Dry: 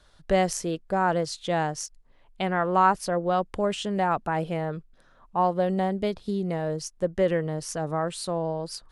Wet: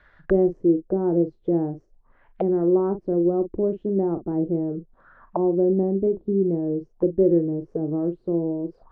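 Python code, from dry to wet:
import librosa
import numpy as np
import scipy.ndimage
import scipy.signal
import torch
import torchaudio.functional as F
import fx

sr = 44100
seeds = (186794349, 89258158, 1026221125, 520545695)

y = fx.doubler(x, sr, ms=41.0, db=-10)
y = fx.envelope_lowpass(y, sr, base_hz=350.0, top_hz=2000.0, q=4.8, full_db=-28.5, direction='down')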